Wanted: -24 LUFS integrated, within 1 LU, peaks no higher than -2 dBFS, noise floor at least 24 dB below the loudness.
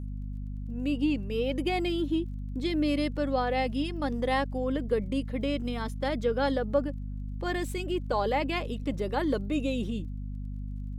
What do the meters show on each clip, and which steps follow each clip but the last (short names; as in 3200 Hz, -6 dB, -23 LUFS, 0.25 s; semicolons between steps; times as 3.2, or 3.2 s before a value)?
ticks 21/s; hum 50 Hz; harmonics up to 250 Hz; hum level -33 dBFS; loudness -30.5 LUFS; peak -13.5 dBFS; loudness target -24.0 LUFS
-> de-click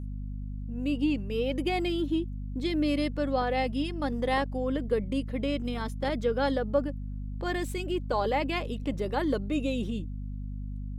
ticks 0.091/s; hum 50 Hz; harmonics up to 250 Hz; hum level -33 dBFS
-> notches 50/100/150/200/250 Hz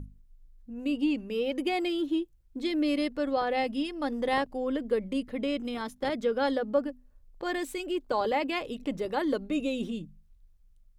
hum none; loudness -30.5 LUFS; peak -14.5 dBFS; loudness target -24.0 LUFS
-> gain +6.5 dB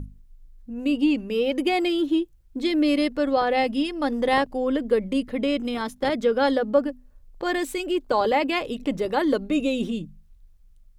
loudness -24.0 LUFS; peak -8.0 dBFS; noise floor -53 dBFS